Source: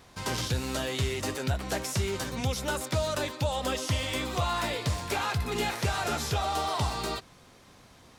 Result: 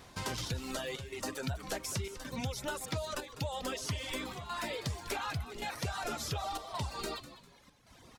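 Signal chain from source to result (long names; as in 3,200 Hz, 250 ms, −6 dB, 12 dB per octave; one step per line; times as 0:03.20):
reverb reduction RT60 1.4 s
downward compressor 3 to 1, threshold −37 dBFS, peak gain reduction 10 dB
square-wave tremolo 0.89 Hz, depth 65%, duty 85%
echo with shifted repeats 200 ms, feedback 36%, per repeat −110 Hz, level −13.5 dB
level +1 dB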